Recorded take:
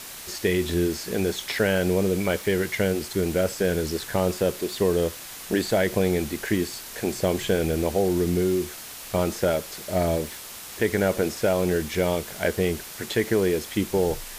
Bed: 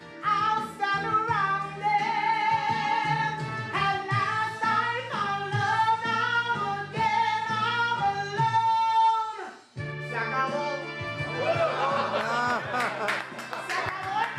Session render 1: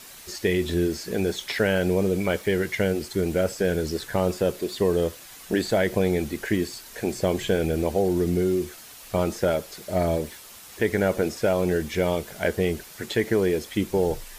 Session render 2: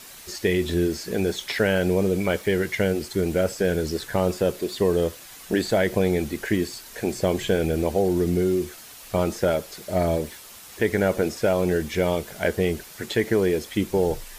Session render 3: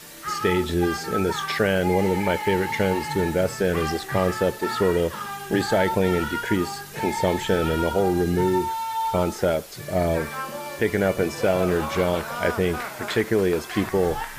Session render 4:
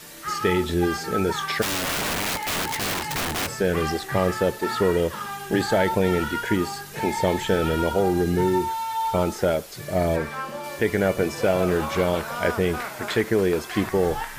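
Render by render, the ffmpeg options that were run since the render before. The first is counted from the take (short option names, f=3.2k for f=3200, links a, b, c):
-af "afftdn=nr=7:nf=-40"
-af "volume=1dB"
-filter_complex "[1:a]volume=-4.5dB[a];[0:a][a]amix=inputs=2:normalize=0"
-filter_complex "[0:a]asplit=3[a][b][c];[a]afade=t=out:st=1.61:d=0.02[d];[b]aeval=exprs='(mod(11.2*val(0)+1,2)-1)/11.2':c=same,afade=t=in:st=1.61:d=0.02,afade=t=out:st=3.46:d=0.02[e];[c]afade=t=in:st=3.46:d=0.02[f];[d][e][f]amix=inputs=3:normalize=0,asettb=1/sr,asplit=3[g][h][i];[g]atrim=end=10.164[j];[h]atrim=start=10.16:end=10.64,asetpts=PTS-STARTPTS,afade=t=in:d=0.004:c=qsin,afade=t=out:st=0.476:d=0.004:c=qsin,highshelf=f=6.2k:g=-8.5[k];[i]atrim=start=10.636[l];[j][k]acrossfade=d=0.004:c1=hsin:c2=qsin[m];[m][l]acrossfade=d=0.004:c1=qsin:c2=hsin"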